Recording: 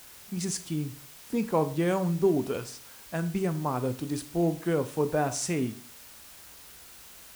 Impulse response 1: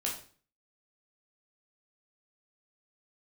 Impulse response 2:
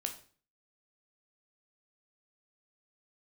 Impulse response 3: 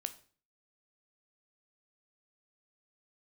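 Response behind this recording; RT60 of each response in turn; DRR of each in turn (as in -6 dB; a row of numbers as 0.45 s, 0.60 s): 3; 0.45 s, 0.45 s, 0.45 s; -3.0 dB, 4.5 dB, 9.5 dB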